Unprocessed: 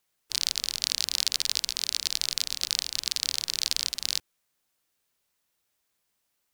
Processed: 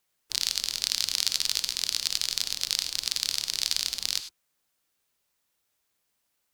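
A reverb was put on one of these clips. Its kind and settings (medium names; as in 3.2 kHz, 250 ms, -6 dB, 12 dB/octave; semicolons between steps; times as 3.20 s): gated-style reverb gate 120 ms rising, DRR 10.5 dB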